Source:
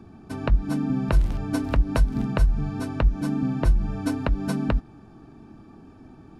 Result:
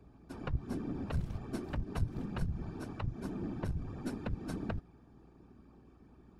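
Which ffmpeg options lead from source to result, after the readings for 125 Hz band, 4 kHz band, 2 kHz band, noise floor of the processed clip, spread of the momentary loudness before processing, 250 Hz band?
-12.5 dB, -13.5 dB, -14.0 dB, -61 dBFS, 5 LU, -13.5 dB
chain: -af "afftfilt=real='hypot(re,im)*cos(2*PI*random(0))':imag='hypot(re,im)*sin(2*PI*random(1))':win_size=512:overlap=0.75,aeval=exprs='(tanh(8.91*val(0)+0.45)-tanh(0.45))/8.91':c=same,aeval=exprs='val(0)+0.00141*(sin(2*PI*60*n/s)+sin(2*PI*2*60*n/s)/2+sin(2*PI*3*60*n/s)/3+sin(2*PI*4*60*n/s)/4+sin(2*PI*5*60*n/s)/5)':c=same,volume=-5.5dB"

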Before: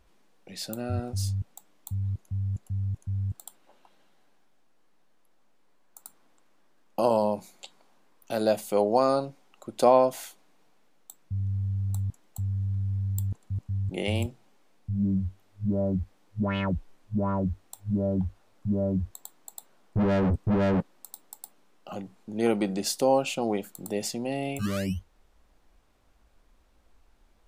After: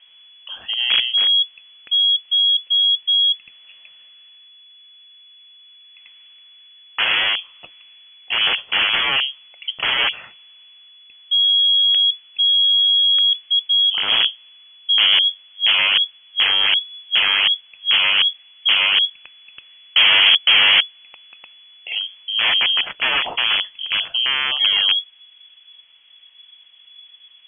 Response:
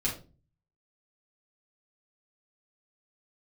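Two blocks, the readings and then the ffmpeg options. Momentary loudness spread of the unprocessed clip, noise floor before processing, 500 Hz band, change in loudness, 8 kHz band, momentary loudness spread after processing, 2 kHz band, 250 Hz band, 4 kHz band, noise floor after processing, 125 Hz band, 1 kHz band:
18 LU, -62 dBFS, -12.5 dB, +13.5 dB, under -40 dB, 10 LU, +23.5 dB, under -15 dB, +31.5 dB, -49 dBFS, under -20 dB, +1.5 dB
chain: -af "aeval=exprs='(mod(12.6*val(0)+1,2)-1)/12.6':c=same,lowpass=f=2.9k:t=q:w=0.5098,lowpass=f=2.9k:t=q:w=0.6013,lowpass=f=2.9k:t=q:w=0.9,lowpass=f=2.9k:t=q:w=2.563,afreqshift=-3400,highshelf=f=2.3k:g=10.5,volume=6dB"

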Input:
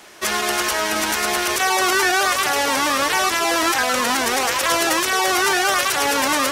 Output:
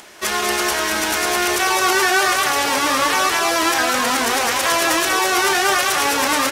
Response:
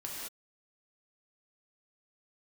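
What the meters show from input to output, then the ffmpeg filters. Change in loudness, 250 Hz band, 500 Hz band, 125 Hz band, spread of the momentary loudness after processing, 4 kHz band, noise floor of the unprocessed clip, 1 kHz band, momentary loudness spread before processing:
+1.5 dB, +1.5 dB, +1.0 dB, +1.0 dB, 3 LU, +1.0 dB, -23 dBFS, +1.5 dB, 3 LU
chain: -filter_complex "[0:a]acompressor=mode=upward:threshold=-40dB:ratio=2.5,asplit=2[a][b];[b]adelay=31,volume=-11dB[c];[a][c]amix=inputs=2:normalize=0,aecho=1:1:194:0.501"

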